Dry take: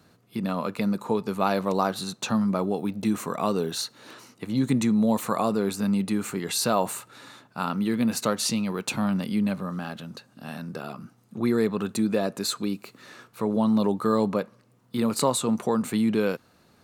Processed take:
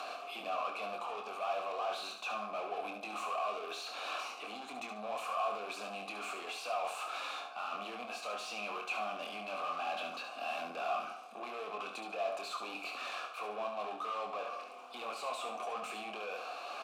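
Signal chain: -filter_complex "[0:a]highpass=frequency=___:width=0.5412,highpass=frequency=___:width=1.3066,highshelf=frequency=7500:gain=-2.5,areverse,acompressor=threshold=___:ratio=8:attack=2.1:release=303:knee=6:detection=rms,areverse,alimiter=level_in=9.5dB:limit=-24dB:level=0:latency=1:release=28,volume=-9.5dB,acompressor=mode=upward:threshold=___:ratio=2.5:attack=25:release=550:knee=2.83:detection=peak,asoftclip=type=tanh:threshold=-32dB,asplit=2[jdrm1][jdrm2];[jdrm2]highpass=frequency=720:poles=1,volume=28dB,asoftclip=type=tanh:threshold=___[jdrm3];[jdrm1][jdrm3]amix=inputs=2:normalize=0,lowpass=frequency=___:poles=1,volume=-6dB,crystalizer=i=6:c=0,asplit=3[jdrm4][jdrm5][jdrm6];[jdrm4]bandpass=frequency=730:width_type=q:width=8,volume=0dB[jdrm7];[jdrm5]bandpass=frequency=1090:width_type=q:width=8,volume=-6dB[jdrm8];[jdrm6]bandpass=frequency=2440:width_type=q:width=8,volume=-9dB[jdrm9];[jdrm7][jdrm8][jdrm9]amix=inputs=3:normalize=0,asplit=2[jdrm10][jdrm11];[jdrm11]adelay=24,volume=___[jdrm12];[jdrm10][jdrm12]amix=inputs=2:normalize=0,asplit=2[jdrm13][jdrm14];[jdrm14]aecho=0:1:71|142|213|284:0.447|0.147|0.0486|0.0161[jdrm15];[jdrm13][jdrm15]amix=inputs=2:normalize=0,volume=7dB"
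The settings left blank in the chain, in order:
230, 230, -34dB, -52dB, -32dB, 2800, -6.5dB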